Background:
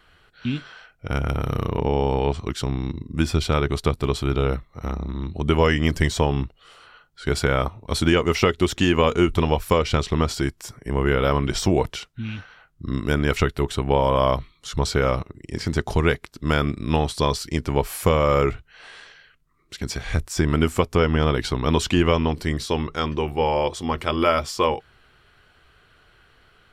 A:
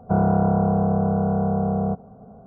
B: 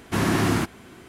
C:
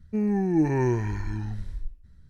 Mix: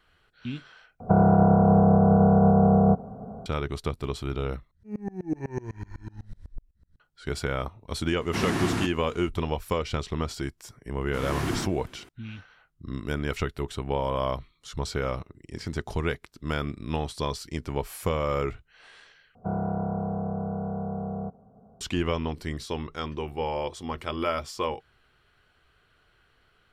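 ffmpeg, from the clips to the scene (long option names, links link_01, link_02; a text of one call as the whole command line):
ffmpeg -i bed.wav -i cue0.wav -i cue1.wav -i cue2.wav -filter_complex "[1:a]asplit=2[link_01][link_02];[2:a]asplit=2[link_03][link_04];[0:a]volume=-8.5dB[link_05];[link_01]alimiter=level_in=15dB:limit=-1dB:release=50:level=0:latency=1[link_06];[3:a]aeval=exprs='val(0)*pow(10,-28*if(lt(mod(-8*n/s,1),2*abs(-8)/1000),1-mod(-8*n/s,1)/(2*abs(-8)/1000),(mod(-8*n/s,1)-2*abs(-8)/1000)/(1-2*abs(-8)/1000))/20)':channel_layout=same[link_07];[link_03]lowpass=11000[link_08];[link_04]dynaudnorm=framelen=180:gausssize=3:maxgain=11.5dB[link_09];[link_05]asplit=4[link_10][link_11][link_12][link_13];[link_10]atrim=end=1.004[link_14];[link_06]atrim=end=2.46,asetpts=PTS-STARTPTS,volume=-9.5dB[link_15];[link_11]atrim=start=3.456:end=4.714[link_16];[link_07]atrim=end=2.29,asetpts=PTS-STARTPTS,volume=-2.5dB[link_17];[link_12]atrim=start=6.996:end=19.354[link_18];[link_02]atrim=end=2.46,asetpts=PTS-STARTPTS,volume=-10dB[link_19];[link_13]atrim=start=21.806[link_20];[link_08]atrim=end=1.08,asetpts=PTS-STARTPTS,volume=-5.5dB,afade=type=in:duration=0.004:curve=hsin,afade=type=out:start_time=1.076:duration=0.004:curve=hsin,adelay=8210[link_21];[link_09]atrim=end=1.08,asetpts=PTS-STARTPTS,volume=-16dB,afade=type=in:duration=0.004:curve=hsin,afade=type=out:start_time=1.076:duration=0.004:curve=hsin,adelay=11010[link_22];[link_14][link_15]acrossfade=duration=0.004:curve1=hsin:curve2=hsin[link_23];[link_23][link_16]acrossfade=duration=0.004:curve1=hsin:curve2=hsin[link_24];[link_24][link_17]acrossfade=duration=0.004:curve1=hsin:curve2=hsin[link_25];[link_25][link_18]acrossfade=duration=0.004:curve1=hsin:curve2=hsin[link_26];[link_26][link_19]acrossfade=duration=0.004:curve1=hsin:curve2=hsin[link_27];[link_27][link_20]acrossfade=duration=0.004:curve1=hsin:curve2=hsin[link_28];[link_28][link_21][link_22]amix=inputs=3:normalize=0" out.wav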